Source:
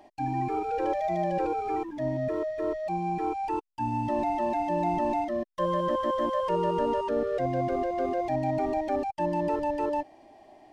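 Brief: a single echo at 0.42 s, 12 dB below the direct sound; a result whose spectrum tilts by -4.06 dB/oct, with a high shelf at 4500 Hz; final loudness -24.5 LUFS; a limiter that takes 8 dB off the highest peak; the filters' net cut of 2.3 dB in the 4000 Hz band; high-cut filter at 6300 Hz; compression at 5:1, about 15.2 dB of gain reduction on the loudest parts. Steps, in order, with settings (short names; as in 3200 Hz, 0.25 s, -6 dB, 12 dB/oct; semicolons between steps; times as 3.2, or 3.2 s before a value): LPF 6300 Hz; bell 4000 Hz -5 dB; high shelf 4500 Hz +4 dB; compressor 5:1, threshold -41 dBFS; limiter -37 dBFS; echo 0.42 s -12 dB; gain +20.5 dB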